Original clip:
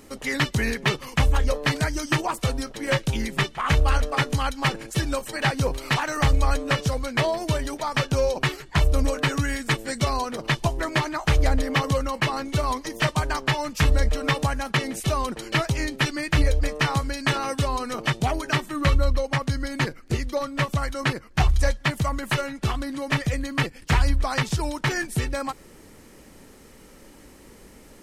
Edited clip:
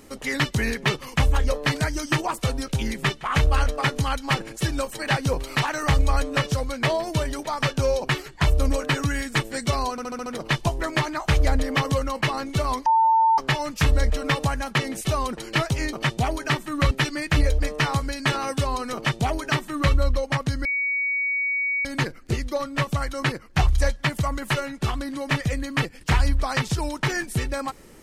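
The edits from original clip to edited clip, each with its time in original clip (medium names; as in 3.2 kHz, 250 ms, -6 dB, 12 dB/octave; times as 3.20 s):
2.68–3.02 s: delete
10.25 s: stutter 0.07 s, 6 plays
12.85–13.37 s: bleep 897 Hz -14.5 dBFS
17.96–18.94 s: copy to 15.92 s
19.66 s: add tone 2.25 kHz -21.5 dBFS 1.20 s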